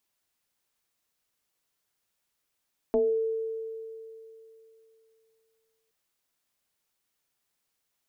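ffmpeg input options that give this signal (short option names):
-f lavfi -i "aevalsrc='0.106*pow(10,-3*t/3.02)*sin(2*PI*447*t+1.1*pow(10,-3*t/0.37)*sin(2*PI*0.47*447*t))':d=2.97:s=44100"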